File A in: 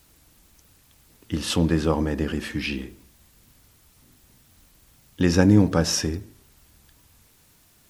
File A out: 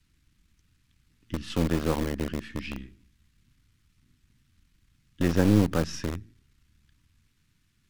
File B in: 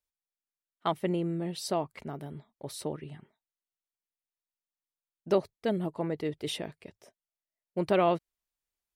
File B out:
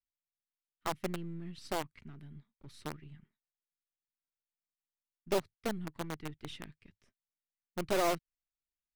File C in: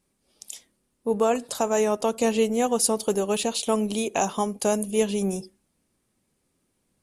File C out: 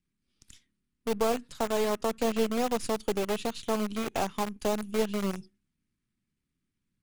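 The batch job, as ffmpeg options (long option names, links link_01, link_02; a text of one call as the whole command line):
ffmpeg -i in.wav -filter_complex "[0:a]aeval=exprs='if(lt(val(0),0),0.447*val(0),val(0))':channel_layout=same,aemphasis=mode=reproduction:type=75fm,acrossover=split=300|1300|2000[link_01][link_02][link_03][link_04];[link_02]acrusher=bits=4:mix=0:aa=0.000001[link_05];[link_01][link_05][link_03][link_04]amix=inputs=4:normalize=0,volume=-4dB" out.wav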